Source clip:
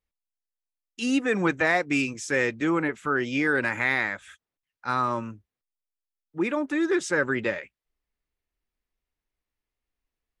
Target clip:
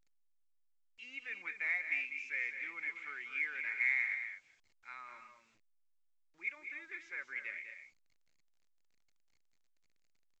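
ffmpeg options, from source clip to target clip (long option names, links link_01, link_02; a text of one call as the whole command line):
ffmpeg -i in.wav -filter_complex "[0:a]asettb=1/sr,asplit=3[link_01][link_02][link_03];[link_01]atrim=end=1.864[link_04];[link_02]atrim=start=1.86:end=4.15,asetpts=PTS-STARTPTS,afade=type=in:duration=0.004:curve=qsin,afade=type=out:start_time=2.286:duration=0.004:curve=qsin,aeval=exprs='val(0)+0.5*0.0188*sgn(val(0))':channel_layout=same[link_05];[link_03]atrim=start=4.146[link_06];[link_04][link_05]acrossfade=duration=0.004:curve1=hsin:curve2=qsin[link_07];[link_07][link_06]acrossfade=duration=0.004:curve1=qsin:curve2=hsin,bandpass=frequency=2200:width_type=q:width=15:csg=0,aecho=1:1:198.3|233.2:0.355|0.282" -ar 16000 -c:a pcm_alaw out.wav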